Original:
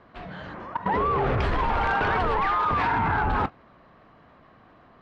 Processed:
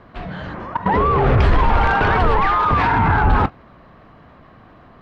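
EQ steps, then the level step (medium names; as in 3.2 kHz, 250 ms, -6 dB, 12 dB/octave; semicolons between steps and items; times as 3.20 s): bass shelf 170 Hz +7 dB; +6.5 dB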